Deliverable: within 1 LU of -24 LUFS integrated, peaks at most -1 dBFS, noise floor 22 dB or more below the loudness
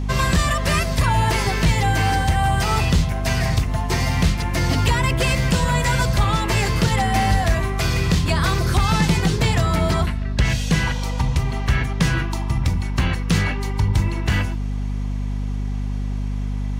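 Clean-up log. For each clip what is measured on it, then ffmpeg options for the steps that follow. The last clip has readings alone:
hum 50 Hz; highest harmonic 250 Hz; hum level -21 dBFS; loudness -20.5 LUFS; peak level -7.5 dBFS; loudness target -24.0 LUFS
-> -af "bandreject=f=50:t=h:w=4,bandreject=f=100:t=h:w=4,bandreject=f=150:t=h:w=4,bandreject=f=200:t=h:w=4,bandreject=f=250:t=h:w=4"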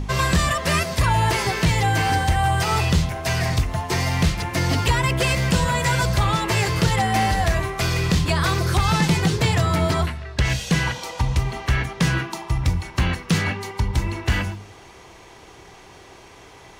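hum not found; loudness -21.5 LUFS; peak level -8.5 dBFS; loudness target -24.0 LUFS
-> -af "volume=0.75"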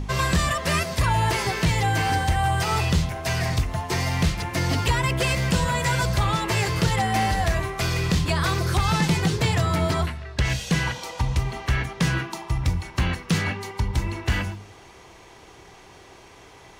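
loudness -24.0 LUFS; peak level -11.0 dBFS; noise floor -48 dBFS

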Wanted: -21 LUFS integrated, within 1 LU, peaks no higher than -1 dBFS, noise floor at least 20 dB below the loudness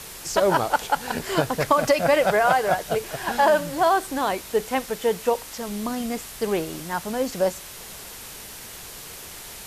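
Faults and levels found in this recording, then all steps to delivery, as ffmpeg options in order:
noise floor -40 dBFS; noise floor target -43 dBFS; loudness -23.0 LUFS; peak level -5.0 dBFS; loudness target -21.0 LUFS
-> -af "afftdn=nr=6:nf=-40"
-af "volume=1.26"

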